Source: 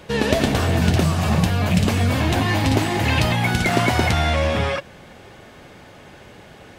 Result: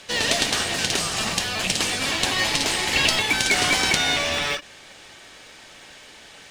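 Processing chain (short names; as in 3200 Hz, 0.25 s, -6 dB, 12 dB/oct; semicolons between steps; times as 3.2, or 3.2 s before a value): weighting filter ITU-R 468; speed mistake 24 fps film run at 25 fps; in parallel at -10.5 dB: sample-rate reducer 1300 Hz; on the sum: ending taper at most 260 dB/s; gain -3.5 dB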